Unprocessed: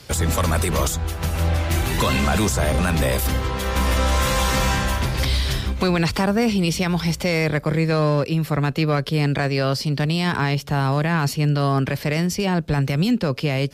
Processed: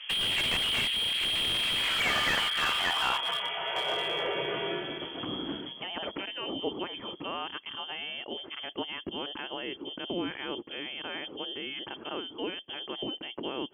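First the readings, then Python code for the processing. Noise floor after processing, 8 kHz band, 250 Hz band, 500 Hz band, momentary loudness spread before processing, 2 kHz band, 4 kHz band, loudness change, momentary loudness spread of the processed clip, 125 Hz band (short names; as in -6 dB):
-47 dBFS, -16.0 dB, -17.5 dB, -13.5 dB, 3 LU, -6.5 dB, +0.5 dB, -9.5 dB, 12 LU, -30.0 dB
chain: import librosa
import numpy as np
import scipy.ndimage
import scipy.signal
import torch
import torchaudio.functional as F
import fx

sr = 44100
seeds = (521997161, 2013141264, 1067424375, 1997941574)

y = fx.freq_invert(x, sr, carrier_hz=3300)
y = fx.filter_sweep_bandpass(y, sr, from_hz=2600.0, to_hz=320.0, start_s=1.58, end_s=4.9, q=2.2)
y = fx.slew_limit(y, sr, full_power_hz=64.0)
y = y * librosa.db_to_amplitude(5.5)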